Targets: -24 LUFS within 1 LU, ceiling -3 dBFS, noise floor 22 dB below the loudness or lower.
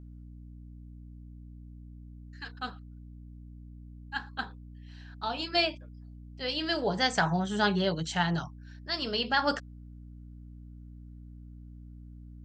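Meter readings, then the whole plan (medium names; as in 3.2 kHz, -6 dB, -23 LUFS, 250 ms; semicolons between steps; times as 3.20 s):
hum 60 Hz; highest harmonic 300 Hz; hum level -43 dBFS; loudness -30.5 LUFS; peak level -12.0 dBFS; loudness target -24.0 LUFS
-> hum notches 60/120/180/240/300 Hz; trim +6.5 dB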